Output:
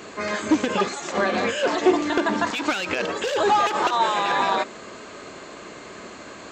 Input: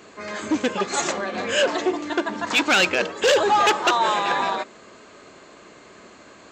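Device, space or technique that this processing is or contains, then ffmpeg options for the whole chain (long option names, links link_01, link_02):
de-esser from a sidechain: -filter_complex "[0:a]asplit=2[link_01][link_02];[link_02]highpass=6000,apad=whole_len=287128[link_03];[link_01][link_03]sidechaincompress=threshold=-46dB:ratio=5:attack=2.4:release=50,volume=7dB"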